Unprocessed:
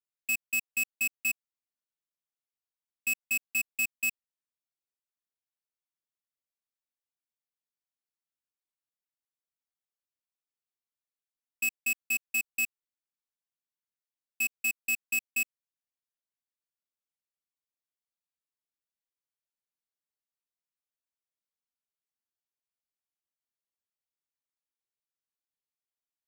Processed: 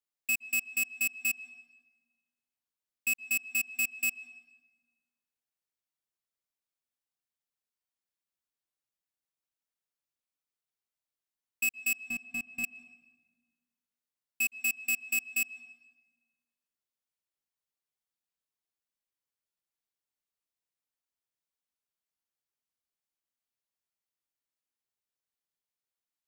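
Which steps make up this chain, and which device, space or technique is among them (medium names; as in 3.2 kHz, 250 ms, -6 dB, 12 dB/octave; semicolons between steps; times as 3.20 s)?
11.96–12.64 s: tilt EQ -4 dB/octave; filtered reverb send (on a send: high-pass 170 Hz 6 dB/octave + low-pass 4.2 kHz 12 dB/octave + reverberation RT60 1.3 s, pre-delay 114 ms, DRR 16.5 dB)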